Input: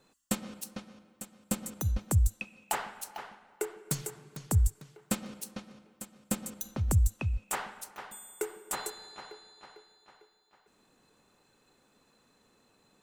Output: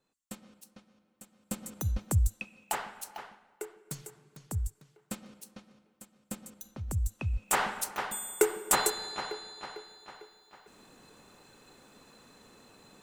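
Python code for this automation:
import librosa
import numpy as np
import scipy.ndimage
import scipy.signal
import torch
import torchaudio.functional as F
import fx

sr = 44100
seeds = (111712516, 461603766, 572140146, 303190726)

y = fx.gain(x, sr, db=fx.line((0.91, -13.0), (1.81, -1.0), (3.16, -1.0), (3.77, -8.0), (6.9, -8.0), (7.43, 2.0), (7.63, 10.0)))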